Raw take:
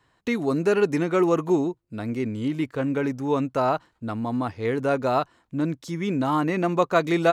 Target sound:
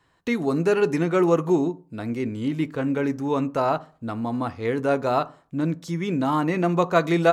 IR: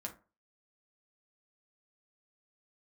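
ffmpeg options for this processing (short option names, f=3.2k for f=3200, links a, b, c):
-filter_complex "[0:a]asplit=2[a][b];[1:a]atrim=start_sample=2205,asetrate=36162,aresample=44100[c];[b][c]afir=irnorm=-1:irlink=0,volume=-7dB[d];[a][d]amix=inputs=2:normalize=0,volume=-2dB" -ar 44100 -c:a ac3 -b:a 128k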